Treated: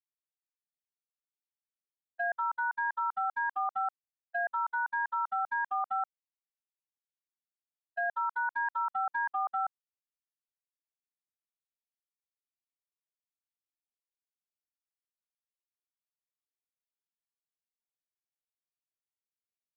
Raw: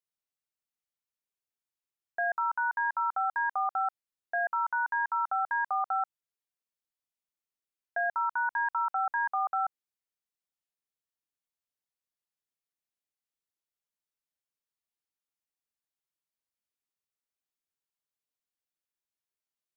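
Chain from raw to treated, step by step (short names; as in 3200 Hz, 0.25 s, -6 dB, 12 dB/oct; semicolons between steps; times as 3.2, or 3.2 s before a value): gate -29 dBFS, range -47 dB; limiter -31.5 dBFS, peak gain reduction 8.5 dB; gain +7 dB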